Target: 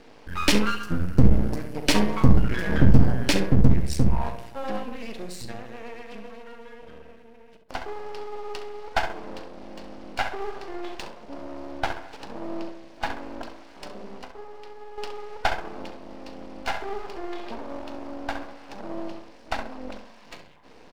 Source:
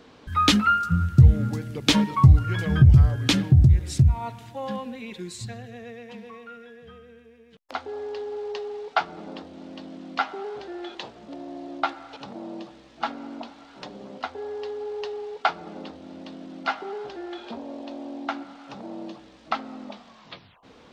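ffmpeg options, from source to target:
-filter_complex "[0:a]asettb=1/sr,asplit=3[a][b][c];[a]atrim=end=14.144[d];[b]atrim=start=14.14:end=14.98,asetpts=PTS-STARTPTS,afade=t=in:d=0.004:c=qsin,afade=t=out:st=0.836:d=0.004:c=qsin,acompressor=threshold=-38dB:ratio=6[e];[c]atrim=start=14.976[f];[d][e]acrossfade=d=0.004:c1=hsin:c2=qsin[g];[g][f]acrossfade=d=0.004:c1=qsin:c2=hsin,superequalizer=10b=0.355:13b=0.501:15b=0.562,asplit=2[h][i];[i]adelay=66,lowpass=f=1.1k:p=1,volume=-5dB,asplit=2[j][k];[k]adelay=66,lowpass=f=1.1k:p=1,volume=0.5,asplit=2[l][m];[m]adelay=66,lowpass=f=1.1k:p=1,volume=0.5,asplit=2[n][o];[o]adelay=66,lowpass=f=1.1k:p=1,volume=0.5,asplit=2[p][q];[q]adelay=66,lowpass=f=1.1k:p=1,volume=0.5,asplit=2[r][s];[s]adelay=66,lowpass=f=1.1k:p=1,volume=0.5[t];[j][l][n][p][r][t]amix=inputs=6:normalize=0[u];[h][u]amix=inputs=2:normalize=0,aeval=exprs='max(val(0),0)':c=same,equalizer=f=110:w=0.98:g=-7,asplit=2[v][w];[w]aecho=0:1:39|68:0.224|0.168[x];[v][x]amix=inputs=2:normalize=0,volume=4.5dB"

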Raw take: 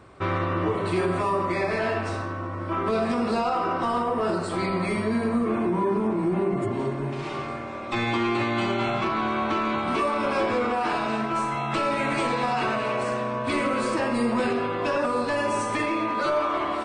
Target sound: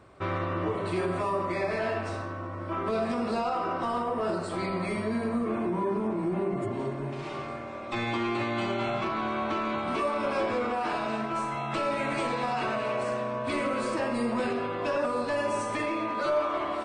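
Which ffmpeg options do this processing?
-af "equalizer=f=610:w=4.8:g=4,volume=-5dB"

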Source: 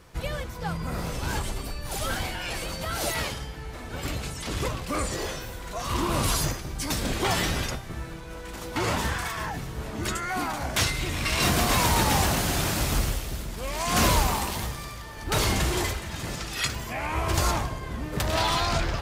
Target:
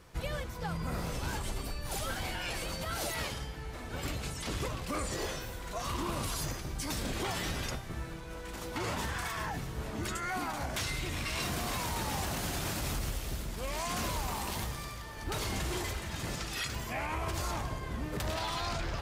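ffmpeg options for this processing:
-af "alimiter=limit=-21.5dB:level=0:latency=1:release=98,volume=-4dB"

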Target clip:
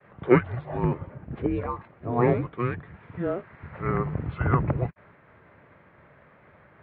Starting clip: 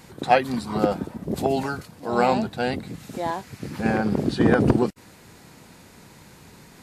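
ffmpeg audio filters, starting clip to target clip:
-af "agate=range=-33dB:threshold=-46dB:ratio=3:detection=peak,highpass=f=250:t=q:w=0.5412,highpass=f=250:t=q:w=1.307,lowpass=f=2.6k:t=q:w=0.5176,lowpass=f=2.6k:t=q:w=0.7071,lowpass=f=2.6k:t=q:w=1.932,afreqshift=-360,highpass=97"

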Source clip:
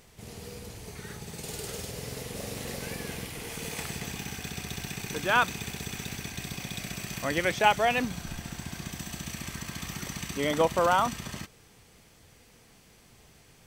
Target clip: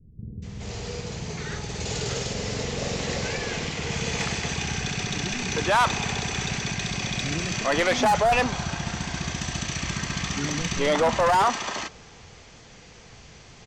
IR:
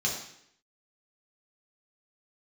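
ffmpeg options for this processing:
-filter_complex "[0:a]adynamicequalizer=threshold=0.01:dfrequency=870:dqfactor=1.2:tfrequency=870:tqfactor=1.2:attack=5:release=100:ratio=0.375:range=4:mode=boostabove:tftype=bell,aresample=16000,asoftclip=type=tanh:threshold=-23dB,aresample=44100,acrossover=split=270[a][b];[b]adelay=420[c];[a][c]amix=inputs=2:normalize=0,aeval=exprs='0.178*(cos(1*acos(clip(val(0)/0.178,-1,1)))-cos(1*PI/2))+0.0355*(cos(5*acos(clip(val(0)/0.178,-1,1)))-cos(5*PI/2))':c=same,volume=4dB"

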